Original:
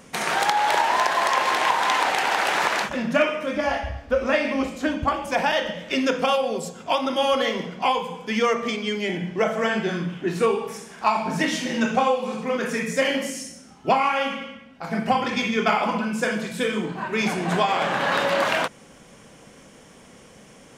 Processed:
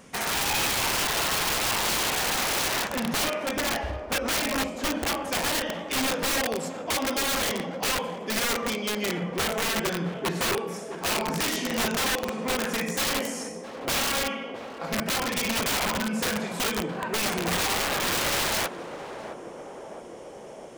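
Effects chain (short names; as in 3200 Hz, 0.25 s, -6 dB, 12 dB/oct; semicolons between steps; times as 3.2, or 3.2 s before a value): wrapped overs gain 18.5 dB; narrowing echo 0.665 s, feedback 83%, band-pass 490 Hz, level -8 dB; gain -2.5 dB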